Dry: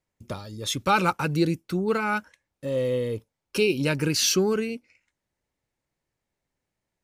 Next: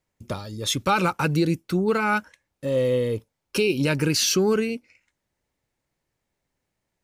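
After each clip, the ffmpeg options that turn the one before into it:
-af "alimiter=limit=0.168:level=0:latency=1:release=106,volume=1.5"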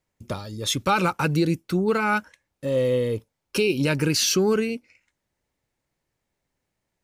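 -af anull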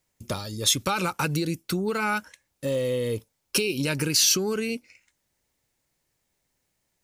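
-af "acompressor=threshold=0.0708:ratio=10,highshelf=f=3600:g=10.5"

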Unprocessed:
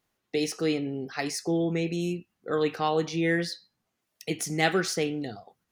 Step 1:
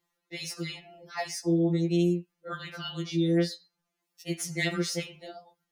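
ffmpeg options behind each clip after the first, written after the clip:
-af "lowshelf=f=180:g=-4,afftfilt=real='re*2.83*eq(mod(b,8),0)':imag='im*2.83*eq(mod(b,8),0)':win_size=2048:overlap=0.75"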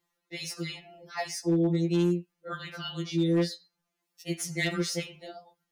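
-af "asoftclip=type=hard:threshold=0.112"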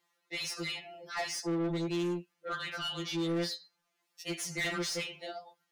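-filter_complex "[0:a]asplit=2[s0][s1];[s1]highpass=f=720:p=1,volume=8.91,asoftclip=type=tanh:threshold=0.112[s2];[s0][s2]amix=inputs=2:normalize=0,lowpass=f=5800:p=1,volume=0.501,volume=0.422"

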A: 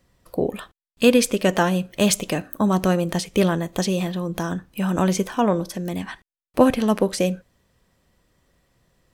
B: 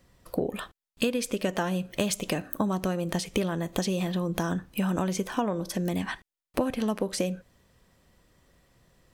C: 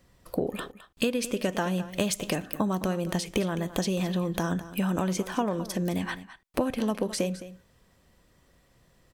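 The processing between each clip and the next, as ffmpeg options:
-af "acompressor=threshold=0.0562:ratio=12,volume=1.19"
-af "aecho=1:1:212:0.188"

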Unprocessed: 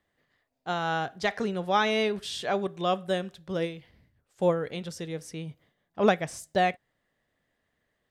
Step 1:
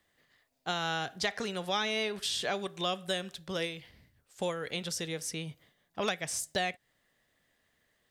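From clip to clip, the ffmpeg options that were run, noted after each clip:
-filter_complex "[0:a]acrossover=split=570|1700[s0][s1][s2];[s0]acompressor=threshold=0.0126:ratio=4[s3];[s1]acompressor=threshold=0.0112:ratio=4[s4];[s2]acompressor=threshold=0.0112:ratio=4[s5];[s3][s4][s5]amix=inputs=3:normalize=0,highshelf=f=2200:g=9.5"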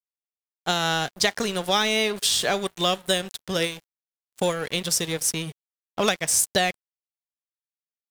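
-af "crystalizer=i=7:c=0,tiltshelf=f=1400:g=7,aeval=exprs='sgn(val(0))*max(abs(val(0))-0.0112,0)':c=same,volume=1.68"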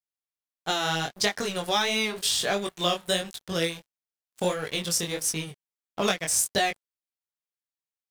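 -af "flanger=delay=19:depth=5.3:speed=1.5"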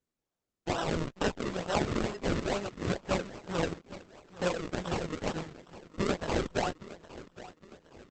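-af "acrusher=samples=38:mix=1:aa=0.000001:lfo=1:lforange=38:lforate=2.2,aecho=1:1:814|1628|2442|3256:0.158|0.0761|0.0365|0.0175,volume=0.631" -ar 48000 -c:a libopus -b:a 10k

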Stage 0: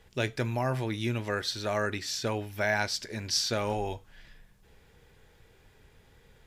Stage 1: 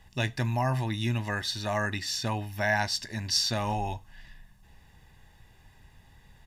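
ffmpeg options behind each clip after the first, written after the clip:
-af "aecho=1:1:1.1:0.69"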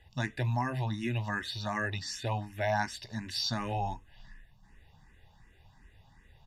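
-filter_complex "[0:a]highshelf=f=8000:g=-11.5,asplit=2[s0][s1];[s1]afreqshift=2.7[s2];[s0][s2]amix=inputs=2:normalize=1"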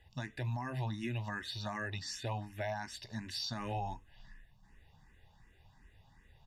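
-af "alimiter=level_in=1.19:limit=0.0631:level=0:latency=1:release=138,volume=0.841,volume=0.668"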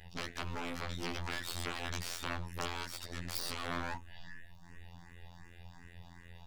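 -af "afftfilt=real='hypot(re,im)*cos(PI*b)':imag='0':win_size=2048:overlap=0.75,aeval=exprs='max(val(0),0)':c=same,aeval=exprs='0.0708*(cos(1*acos(clip(val(0)/0.0708,-1,1)))-cos(1*PI/2))+0.0316*(cos(4*acos(clip(val(0)/0.0708,-1,1)))-cos(4*PI/2))':c=same,volume=5.31"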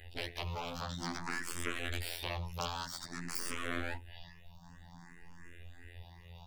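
-filter_complex "[0:a]asplit=2[s0][s1];[s1]afreqshift=0.52[s2];[s0][s2]amix=inputs=2:normalize=1,volume=1.5"

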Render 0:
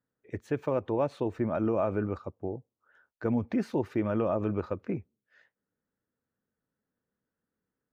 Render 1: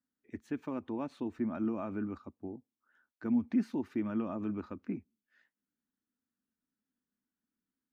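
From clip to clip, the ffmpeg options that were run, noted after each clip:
-af "equalizer=f=125:t=o:w=1:g=-11,equalizer=f=250:t=o:w=1:g=12,equalizer=f=500:t=o:w=1:g=-12,volume=0.473"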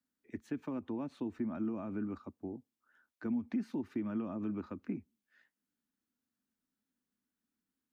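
-filter_complex "[0:a]acrossover=split=110|330[s0][s1][s2];[s0]acompressor=threshold=0.00126:ratio=4[s3];[s1]acompressor=threshold=0.0158:ratio=4[s4];[s2]acompressor=threshold=0.00562:ratio=4[s5];[s3][s4][s5]amix=inputs=3:normalize=0,volume=1.12"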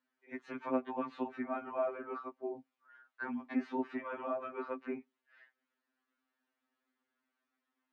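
-af "highpass=570,lowpass=2200,afftfilt=real='re*2.45*eq(mod(b,6),0)':imag='im*2.45*eq(mod(b,6),0)':win_size=2048:overlap=0.75,volume=5.01"

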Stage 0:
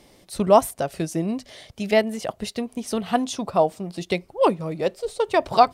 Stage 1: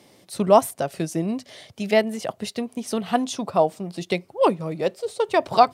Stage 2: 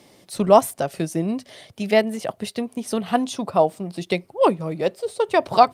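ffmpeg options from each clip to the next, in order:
-af "highpass=f=94:w=0.5412,highpass=f=94:w=1.3066"
-af "volume=1.19" -ar 48000 -c:a libopus -b:a 48k

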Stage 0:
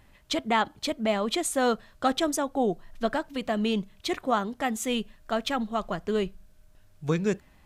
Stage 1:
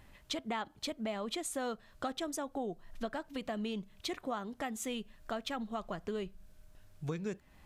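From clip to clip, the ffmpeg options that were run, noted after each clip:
-af "acompressor=threshold=0.0141:ratio=3,volume=0.891"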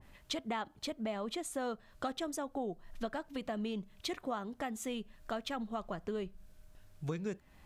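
-af "adynamicequalizer=threshold=0.00224:dfrequency=1700:dqfactor=0.7:tfrequency=1700:tqfactor=0.7:attack=5:release=100:ratio=0.375:range=2:mode=cutabove:tftype=highshelf"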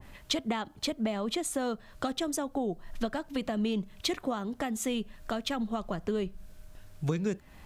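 -filter_complex "[0:a]acrossover=split=360|3000[s0][s1][s2];[s1]acompressor=threshold=0.00562:ratio=2[s3];[s0][s3][s2]amix=inputs=3:normalize=0,volume=2.66"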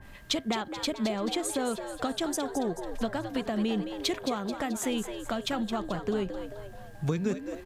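-filter_complex "[0:a]aeval=exprs='val(0)+0.00112*sin(2*PI*1600*n/s)':c=same,asplit=7[s0][s1][s2][s3][s4][s5][s6];[s1]adelay=217,afreqshift=98,volume=0.355[s7];[s2]adelay=434,afreqshift=196,volume=0.174[s8];[s3]adelay=651,afreqshift=294,volume=0.0851[s9];[s4]adelay=868,afreqshift=392,volume=0.0417[s10];[s5]adelay=1085,afreqshift=490,volume=0.0204[s11];[s6]adelay=1302,afreqshift=588,volume=0.01[s12];[s0][s7][s8][s9][s10][s11][s12]amix=inputs=7:normalize=0,volume=1.12"

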